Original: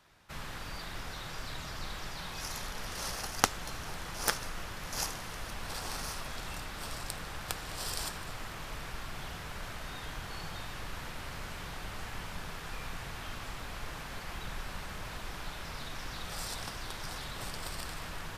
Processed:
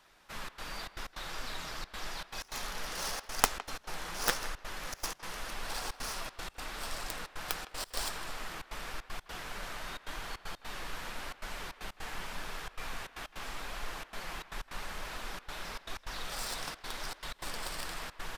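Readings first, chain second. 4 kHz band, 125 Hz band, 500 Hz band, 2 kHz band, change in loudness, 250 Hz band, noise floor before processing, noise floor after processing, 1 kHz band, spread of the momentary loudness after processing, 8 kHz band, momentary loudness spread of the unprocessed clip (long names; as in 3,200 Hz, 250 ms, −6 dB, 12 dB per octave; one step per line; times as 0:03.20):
0.0 dB, −7.0 dB, 0.0 dB, +0.5 dB, 0.0 dB, −3.5 dB, −43 dBFS, −58 dBFS, +0.5 dB, 6 LU, −0.5 dB, 7 LU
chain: stylus tracing distortion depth 0.22 ms
parametric band 95 Hz −12 dB 1.8 octaves
flanger 0.87 Hz, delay 0.9 ms, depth 6 ms, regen +77%
gate pattern "xxxxx.xxx.x.xx" 155 BPM −24 dB
far-end echo of a speakerphone 160 ms, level −14 dB
level +6 dB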